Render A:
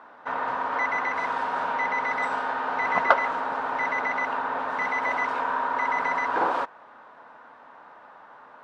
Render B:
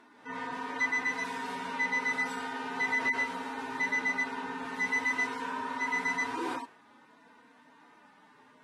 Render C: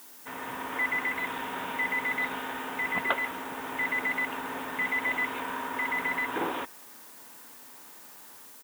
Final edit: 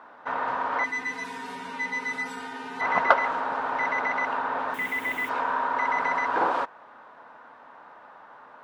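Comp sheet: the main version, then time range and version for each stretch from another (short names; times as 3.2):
A
0.84–2.81 from B
4.74–5.29 from C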